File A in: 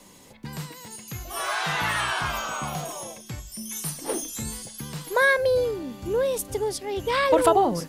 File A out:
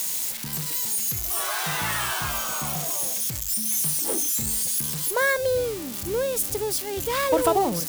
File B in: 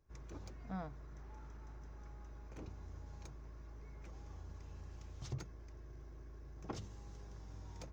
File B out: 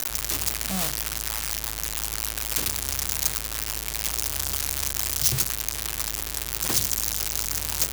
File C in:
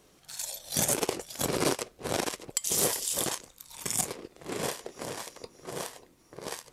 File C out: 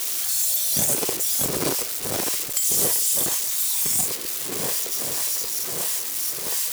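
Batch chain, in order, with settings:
zero-crossing glitches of -17.5 dBFS; bass shelf 390 Hz +4 dB; peak normalisation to -9 dBFS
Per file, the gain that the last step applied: -3.5 dB, +8.0 dB, -0.5 dB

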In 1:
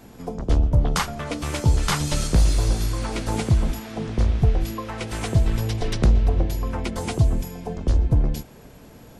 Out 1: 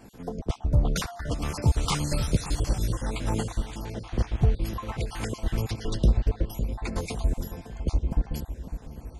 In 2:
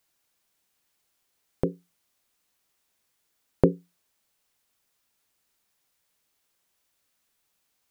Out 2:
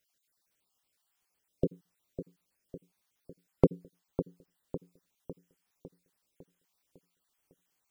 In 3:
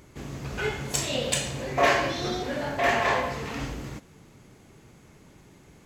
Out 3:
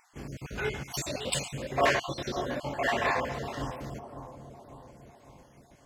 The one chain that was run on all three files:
random holes in the spectrogram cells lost 37%; bucket-brigade echo 553 ms, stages 4096, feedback 52%, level -10.5 dB; trim -3 dB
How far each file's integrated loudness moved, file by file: -5.5 LU, -7.5 LU, -4.5 LU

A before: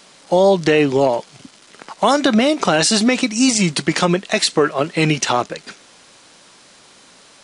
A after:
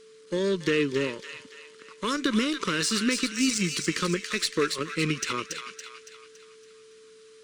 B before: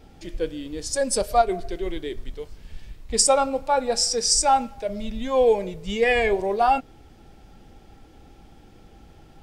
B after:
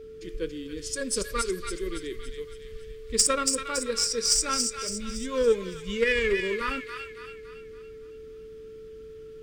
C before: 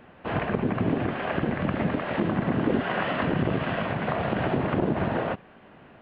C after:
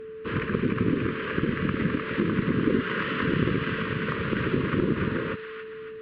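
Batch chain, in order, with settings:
Chebyshev shaper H 6 -35 dB, 7 -26 dB, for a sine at -1 dBFS; Chebyshev band-stop 450–1200 Hz, order 2; on a send: feedback echo behind a high-pass 281 ms, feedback 47%, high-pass 1.5 kHz, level -4.5 dB; on the sum: whistle 440 Hz -41 dBFS; normalise loudness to -27 LUFS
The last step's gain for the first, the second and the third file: -8.5 dB, 0.0 dB, +4.5 dB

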